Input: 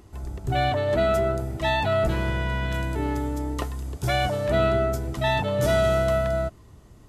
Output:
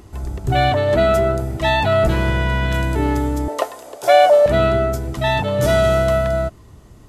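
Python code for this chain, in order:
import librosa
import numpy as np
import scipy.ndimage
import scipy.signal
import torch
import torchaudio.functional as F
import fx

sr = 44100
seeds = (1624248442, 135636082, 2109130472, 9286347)

y = fx.highpass_res(x, sr, hz=590.0, q=4.1, at=(3.48, 4.46))
y = fx.rider(y, sr, range_db=3, speed_s=2.0)
y = y * 10.0 ** (5.5 / 20.0)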